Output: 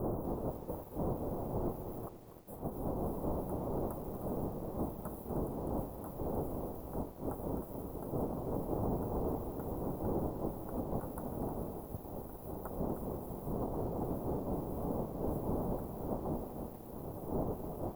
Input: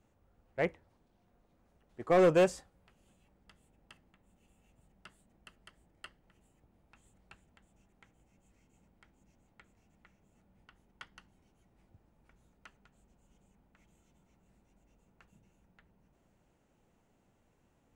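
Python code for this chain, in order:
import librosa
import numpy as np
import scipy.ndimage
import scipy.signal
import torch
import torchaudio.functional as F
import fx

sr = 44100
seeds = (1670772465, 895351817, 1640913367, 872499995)

y = fx.envelope_flatten(x, sr, power=0.6)
y = fx.dmg_wind(y, sr, seeds[0], corner_hz=500.0, level_db=-50.0)
y = fx.over_compress(y, sr, threshold_db=-52.0, ratio=-1.0)
y = fx.peak_eq(y, sr, hz=7400.0, db=6.5, octaves=0.3)
y = fx.echo_feedback(y, sr, ms=309, feedback_pct=27, wet_db=-10.0)
y = np.where(np.abs(y) >= 10.0 ** (-54.5 / 20.0), y, 0.0)
y = scipy.signal.sosfilt(scipy.signal.cheby2(4, 60, [2300.0, 6000.0], 'bandstop', fs=sr, output='sos'), y)
y = fx.echo_crushed(y, sr, ms=243, feedback_pct=55, bits=11, wet_db=-12.0)
y = y * 10.0 ** (10.0 / 20.0)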